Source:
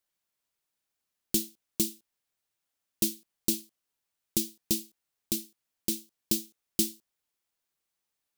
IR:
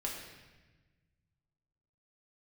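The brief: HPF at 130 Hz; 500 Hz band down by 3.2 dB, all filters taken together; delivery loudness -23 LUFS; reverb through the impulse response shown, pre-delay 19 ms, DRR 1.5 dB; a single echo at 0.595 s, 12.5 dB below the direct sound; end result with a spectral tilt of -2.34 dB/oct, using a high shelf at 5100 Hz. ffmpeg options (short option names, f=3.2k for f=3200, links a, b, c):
-filter_complex "[0:a]highpass=130,equalizer=f=500:t=o:g=-6.5,highshelf=f=5.1k:g=-6.5,aecho=1:1:595:0.237,asplit=2[a][b];[1:a]atrim=start_sample=2205,adelay=19[c];[b][c]afir=irnorm=-1:irlink=0,volume=-3.5dB[d];[a][d]amix=inputs=2:normalize=0,volume=12dB"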